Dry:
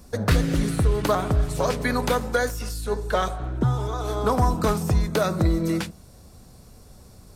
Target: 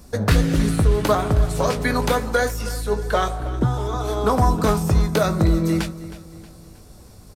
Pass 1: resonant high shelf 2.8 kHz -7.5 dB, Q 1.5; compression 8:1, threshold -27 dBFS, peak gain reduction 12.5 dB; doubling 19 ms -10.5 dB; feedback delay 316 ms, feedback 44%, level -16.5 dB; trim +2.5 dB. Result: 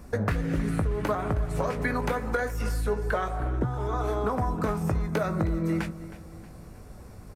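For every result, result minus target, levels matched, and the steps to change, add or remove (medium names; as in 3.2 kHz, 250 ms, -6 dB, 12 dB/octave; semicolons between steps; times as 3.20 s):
compression: peak gain reduction +12.5 dB; 4 kHz band -7.0 dB
remove: compression 8:1, threshold -27 dBFS, peak gain reduction 12.5 dB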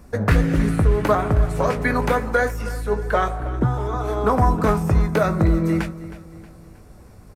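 4 kHz band -8.0 dB
remove: resonant high shelf 2.8 kHz -7.5 dB, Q 1.5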